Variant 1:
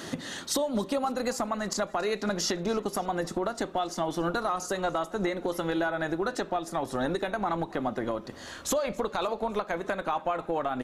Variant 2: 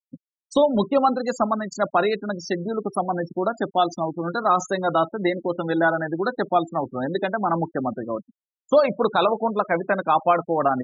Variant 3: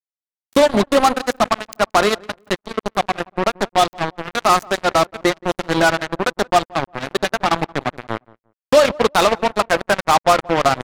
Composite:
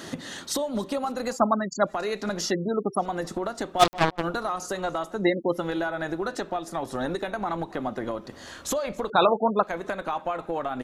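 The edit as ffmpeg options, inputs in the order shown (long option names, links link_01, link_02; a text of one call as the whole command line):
ffmpeg -i take0.wav -i take1.wav -i take2.wav -filter_complex "[1:a]asplit=4[link_01][link_02][link_03][link_04];[0:a]asplit=6[link_05][link_06][link_07][link_08][link_09][link_10];[link_05]atrim=end=1.41[link_11];[link_01]atrim=start=1.31:end=1.93[link_12];[link_06]atrim=start=1.83:end=2.55[link_13];[link_02]atrim=start=2.45:end=3.06[link_14];[link_07]atrim=start=2.96:end=3.83[link_15];[2:a]atrim=start=3.79:end=4.24[link_16];[link_08]atrim=start=4.2:end=5.27[link_17];[link_03]atrim=start=5.11:end=5.67[link_18];[link_09]atrim=start=5.51:end=9.102[link_19];[link_04]atrim=start=9.098:end=9.632[link_20];[link_10]atrim=start=9.628[link_21];[link_11][link_12]acrossfade=duration=0.1:curve1=tri:curve2=tri[link_22];[link_22][link_13]acrossfade=duration=0.1:curve1=tri:curve2=tri[link_23];[link_23][link_14]acrossfade=duration=0.1:curve1=tri:curve2=tri[link_24];[link_24][link_15]acrossfade=duration=0.1:curve1=tri:curve2=tri[link_25];[link_25][link_16]acrossfade=duration=0.04:curve1=tri:curve2=tri[link_26];[link_26][link_17]acrossfade=duration=0.04:curve1=tri:curve2=tri[link_27];[link_27][link_18]acrossfade=duration=0.16:curve1=tri:curve2=tri[link_28];[link_28][link_19]acrossfade=duration=0.16:curve1=tri:curve2=tri[link_29];[link_29][link_20]acrossfade=duration=0.004:curve1=hsin:curve2=hsin[link_30];[link_30][link_21]acrossfade=duration=0.004:curve1=hsin:curve2=hsin" out.wav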